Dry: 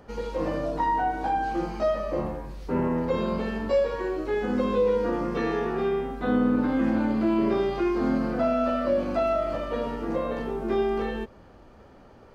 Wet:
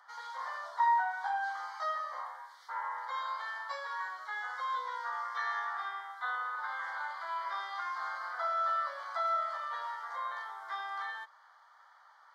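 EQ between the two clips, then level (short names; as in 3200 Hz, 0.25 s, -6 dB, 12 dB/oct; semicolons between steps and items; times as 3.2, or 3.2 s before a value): steep high-pass 950 Hz 36 dB/oct; Butterworth band-stop 2600 Hz, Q 2.2; high shelf 5000 Hz -11.5 dB; +2.0 dB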